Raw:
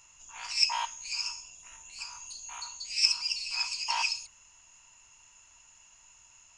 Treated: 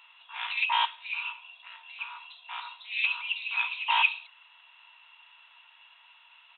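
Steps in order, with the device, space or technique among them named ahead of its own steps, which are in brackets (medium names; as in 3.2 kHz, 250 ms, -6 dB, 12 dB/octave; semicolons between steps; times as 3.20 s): musical greeting card (resampled via 8 kHz; high-pass 790 Hz 24 dB/octave; peaking EQ 3.7 kHz +10 dB 0.37 oct); trim +7 dB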